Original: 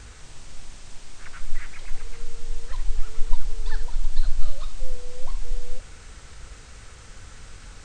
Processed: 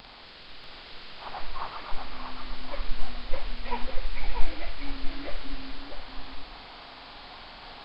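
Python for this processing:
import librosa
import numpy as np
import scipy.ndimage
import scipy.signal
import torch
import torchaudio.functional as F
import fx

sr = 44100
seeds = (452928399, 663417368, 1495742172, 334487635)

p1 = fx.pitch_bins(x, sr, semitones=-10.5)
p2 = fx.low_shelf(p1, sr, hz=200.0, db=-6.5)
p3 = p2 + fx.echo_single(p2, sr, ms=639, db=-4.5, dry=0)
p4 = fx.dynamic_eq(p3, sr, hz=980.0, q=0.99, threshold_db=-54.0, ratio=4.0, max_db=3)
p5 = fx.band_widen(p4, sr, depth_pct=40)
y = F.gain(torch.from_numpy(p5), 5.5).numpy()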